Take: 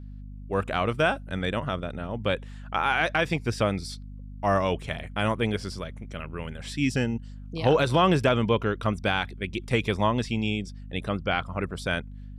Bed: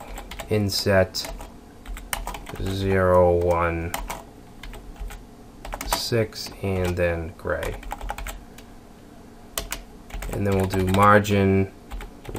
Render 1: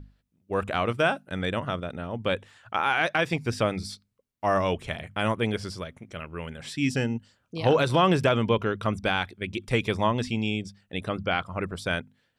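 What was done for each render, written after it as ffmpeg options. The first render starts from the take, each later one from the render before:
ffmpeg -i in.wav -af "bandreject=frequency=50:width_type=h:width=6,bandreject=frequency=100:width_type=h:width=6,bandreject=frequency=150:width_type=h:width=6,bandreject=frequency=200:width_type=h:width=6,bandreject=frequency=250:width_type=h:width=6" out.wav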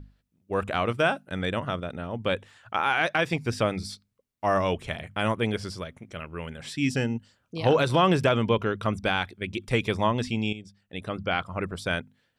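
ffmpeg -i in.wav -filter_complex "[0:a]asplit=2[link_01][link_02];[link_01]atrim=end=10.53,asetpts=PTS-STARTPTS,afade=type=out:start_time=10.526:duration=0.004:curve=hsin:silence=0.251189[link_03];[link_02]atrim=start=10.53,asetpts=PTS-STARTPTS,afade=type=in:duration=0.87:silence=0.251189[link_04];[link_03][link_04]concat=n=2:v=0:a=1" out.wav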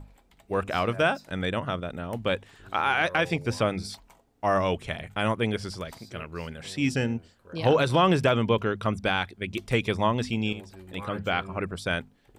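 ffmpeg -i in.wav -i bed.wav -filter_complex "[1:a]volume=-24dB[link_01];[0:a][link_01]amix=inputs=2:normalize=0" out.wav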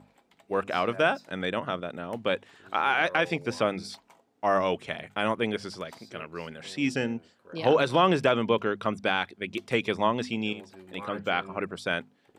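ffmpeg -i in.wav -af "highpass=200,highshelf=frequency=9000:gain=-10" out.wav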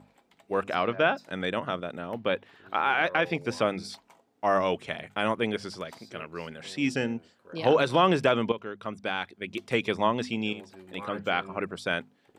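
ffmpeg -i in.wav -filter_complex "[0:a]asplit=3[link_01][link_02][link_03];[link_01]afade=type=out:start_time=0.74:duration=0.02[link_04];[link_02]lowpass=frequency=4300:width=0.5412,lowpass=frequency=4300:width=1.3066,afade=type=in:start_time=0.74:duration=0.02,afade=type=out:start_time=1.16:duration=0.02[link_05];[link_03]afade=type=in:start_time=1.16:duration=0.02[link_06];[link_04][link_05][link_06]amix=inputs=3:normalize=0,asettb=1/sr,asplit=3[link_07][link_08][link_09];[link_07]atrim=end=2.124[link_10];[link_08]atrim=start=2.12:end=3.35,asetpts=PTS-STARTPTS,afade=type=in:duration=0.004:curve=qsin,afade=type=out:start_time=1.226:duration=0.004:curve=qsin,equalizer=frequency=7800:width_type=o:width=0.94:gain=-12.5[link_11];[link_09]atrim=start=3.346[link_12];[link_10][link_11]acrossfade=duration=0.004:curve1=hsin:curve2=qsin[link_13];[link_13][link_12]acrossfade=duration=0.004:curve1=qsin:curve2=hsin,asplit=2[link_14][link_15];[link_14]atrim=end=8.52,asetpts=PTS-STARTPTS,afade=type=out:start_time=8.516:duration=0.004:curve=hsin:silence=0.237137[link_16];[link_15]atrim=start=8.52,asetpts=PTS-STARTPTS,afade=type=in:duration=1.29:silence=0.237137[link_17];[link_16][link_17]concat=n=2:v=0:a=1" out.wav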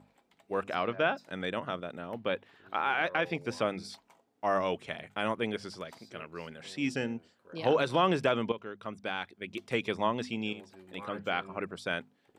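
ffmpeg -i in.wav -af "volume=-4.5dB" out.wav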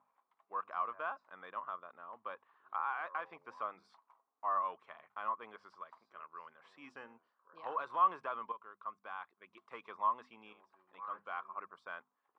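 ffmpeg -i in.wav -filter_complex "[0:a]asplit=2[link_01][link_02];[link_02]asoftclip=type=tanh:threshold=-22.5dB,volume=-4.5dB[link_03];[link_01][link_03]amix=inputs=2:normalize=0,bandpass=frequency=1100:width_type=q:width=7.6:csg=0" out.wav

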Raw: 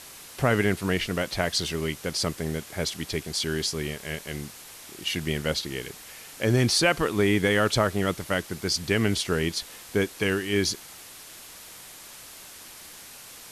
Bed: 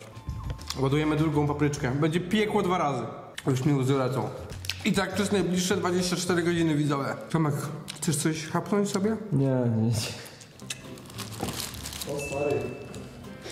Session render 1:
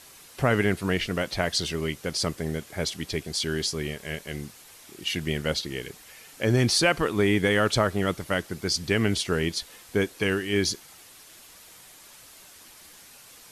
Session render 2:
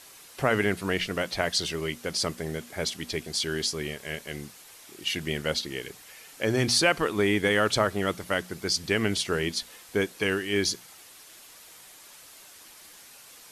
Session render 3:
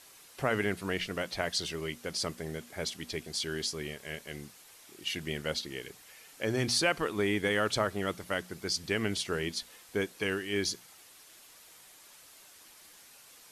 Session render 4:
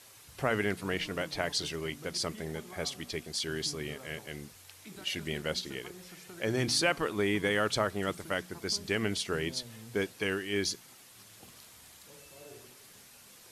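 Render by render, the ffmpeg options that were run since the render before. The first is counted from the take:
ffmpeg -i in.wav -af "afftdn=noise_reduction=6:noise_floor=-45" out.wav
ffmpeg -i in.wav -af "lowshelf=frequency=200:gain=-6.5,bandreject=frequency=60:width_type=h:width=6,bandreject=frequency=120:width_type=h:width=6,bandreject=frequency=180:width_type=h:width=6,bandreject=frequency=240:width_type=h:width=6" out.wav
ffmpeg -i in.wav -af "volume=-5.5dB" out.wav
ffmpeg -i in.wav -i bed.wav -filter_complex "[1:a]volume=-24.5dB[link_01];[0:a][link_01]amix=inputs=2:normalize=0" out.wav

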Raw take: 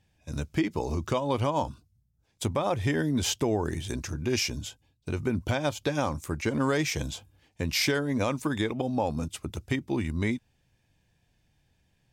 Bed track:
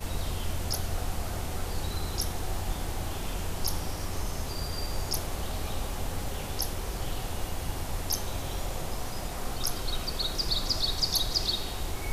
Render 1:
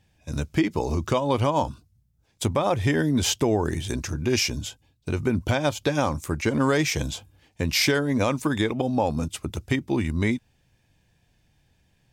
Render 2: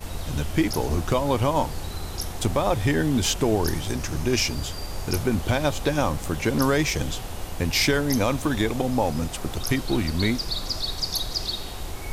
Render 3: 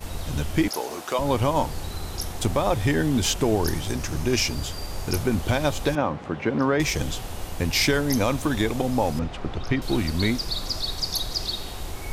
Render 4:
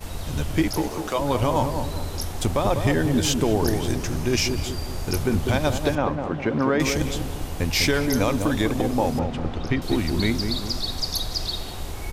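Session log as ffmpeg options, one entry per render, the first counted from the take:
ffmpeg -i in.wav -af "volume=4.5dB" out.wav
ffmpeg -i in.wav -i bed.wav -filter_complex "[1:a]volume=0dB[link_01];[0:a][link_01]amix=inputs=2:normalize=0" out.wav
ffmpeg -i in.wav -filter_complex "[0:a]asettb=1/sr,asplit=3[link_01][link_02][link_03];[link_01]atrim=end=0.684[link_04];[link_02]atrim=start=0.68:end=1.19,asetpts=PTS-STARTPTS,afade=type=in:duration=0.004:curve=qsin,afade=type=out:start_time=0.506:duration=0.004:curve=qsin,highpass=460[link_05];[link_03]atrim=start=1.186[link_06];[link_04][link_05]acrossfade=duration=0.004:curve1=hsin:curve2=qsin[link_07];[link_07][link_06]acrossfade=duration=0.004:curve1=qsin:curve2=hsin,asettb=1/sr,asplit=3[link_08][link_09][link_10];[link_08]atrim=end=5.954[link_11];[link_09]atrim=start=5.95:end=6.8,asetpts=PTS-STARTPTS,afade=type=in:duration=0.004:curve=qsin,afade=type=out:start_time=0.846:duration=0.004:curve=qsin,highpass=140,lowpass=2200[link_12];[link_10]atrim=start=6.796[link_13];[link_11][link_12]acrossfade=duration=0.004:curve1=hsin:curve2=qsin[link_14];[link_14][link_13]acrossfade=duration=0.004:curve1=qsin:curve2=hsin,asettb=1/sr,asplit=3[link_15][link_16][link_17];[link_15]atrim=end=9.194[link_18];[link_16]atrim=start=9.19:end=9.82,asetpts=PTS-STARTPTS,afade=type=in:duration=0.004:curve=qsin,afade=type=out:start_time=0.626:duration=0.004:curve=qsin,lowpass=2900[link_19];[link_17]atrim=start=9.816[link_20];[link_18][link_19]acrossfade=duration=0.004:curve1=hsin:curve2=qsin[link_21];[link_21][link_20]acrossfade=duration=0.004:curve1=qsin:curve2=hsin" out.wav
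ffmpeg -i in.wav -filter_complex "[0:a]asplit=2[link_01][link_02];[link_02]adelay=199,lowpass=frequency=830:poles=1,volume=-4.5dB,asplit=2[link_03][link_04];[link_04]adelay=199,lowpass=frequency=830:poles=1,volume=0.5,asplit=2[link_05][link_06];[link_06]adelay=199,lowpass=frequency=830:poles=1,volume=0.5,asplit=2[link_07][link_08];[link_08]adelay=199,lowpass=frequency=830:poles=1,volume=0.5,asplit=2[link_09][link_10];[link_10]adelay=199,lowpass=frequency=830:poles=1,volume=0.5,asplit=2[link_11][link_12];[link_12]adelay=199,lowpass=frequency=830:poles=1,volume=0.5[link_13];[link_01][link_03][link_05][link_07][link_09][link_11][link_13]amix=inputs=7:normalize=0" out.wav

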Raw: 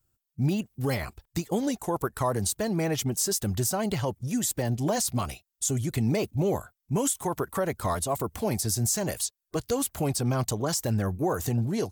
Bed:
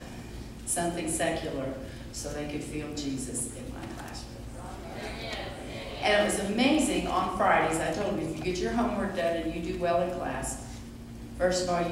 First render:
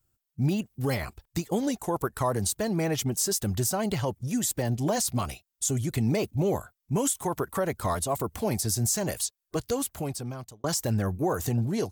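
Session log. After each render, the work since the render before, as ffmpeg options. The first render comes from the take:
ffmpeg -i in.wav -filter_complex "[0:a]asplit=2[link_01][link_02];[link_01]atrim=end=10.64,asetpts=PTS-STARTPTS,afade=type=out:start_time=9.62:duration=1.02[link_03];[link_02]atrim=start=10.64,asetpts=PTS-STARTPTS,afade=type=in:duration=0.004:curve=hsin[link_04];[link_03][link_04]concat=n=2:v=0:a=1" out.wav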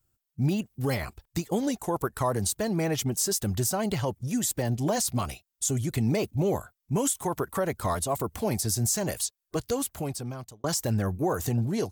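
ffmpeg -i in.wav -af anull out.wav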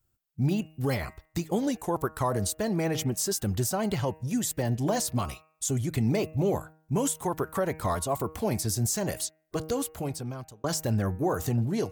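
ffmpeg -i in.wav -af "equalizer=frequency=9700:width=0.37:gain=-3,bandreject=frequency=157.4:width_type=h:width=4,bandreject=frequency=314.8:width_type=h:width=4,bandreject=frequency=472.2:width_type=h:width=4,bandreject=frequency=629.6:width_type=h:width=4,bandreject=frequency=787:width_type=h:width=4,bandreject=frequency=944.4:width_type=h:width=4,bandreject=frequency=1101.8:width_type=h:width=4,bandreject=frequency=1259.2:width_type=h:width=4,bandreject=frequency=1416.6:width_type=h:width=4,bandreject=frequency=1574:width_type=h:width=4,bandreject=frequency=1731.4:width_type=h:width=4,bandreject=frequency=1888.8:width_type=h:width=4,bandreject=frequency=2046.2:width_type=h:width=4,bandreject=frequency=2203.6:width_type=h:width=4,bandreject=frequency=2361:width_type=h:width=4,bandreject=frequency=2518.4:width_type=h:width=4,bandreject=frequency=2675.8:width_type=h:width=4,bandreject=frequency=2833.2:width_type=h:width=4" out.wav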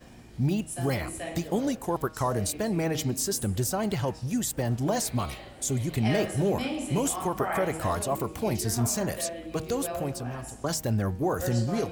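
ffmpeg -i in.wav -i bed.wav -filter_complex "[1:a]volume=-8dB[link_01];[0:a][link_01]amix=inputs=2:normalize=0" out.wav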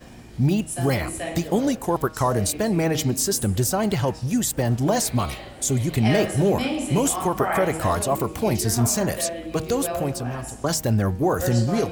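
ffmpeg -i in.wav -af "volume=6dB" out.wav

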